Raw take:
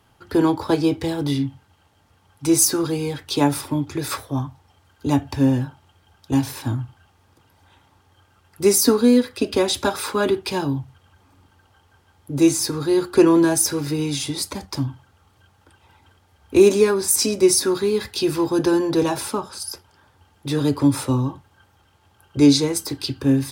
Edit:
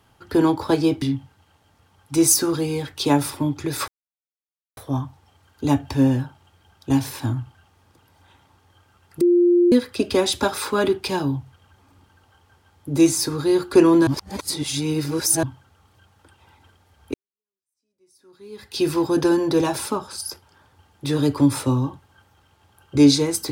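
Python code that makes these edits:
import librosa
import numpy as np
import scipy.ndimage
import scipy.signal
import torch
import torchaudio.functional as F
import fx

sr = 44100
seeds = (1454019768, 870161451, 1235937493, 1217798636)

y = fx.edit(x, sr, fx.cut(start_s=1.02, length_s=0.31),
    fx.insert_silence(at_s=4.19, length_s=0.89),
    fx.bleep(start_s=8.63, length_s=0.51, hz=350.0, db=-12.0),
    fx.reverse_span(start_s=13.49, length_s=1.36),
    fx.fade_in_span(start_s=16.56, length_s=1.68, curve='exp'), tone=tone)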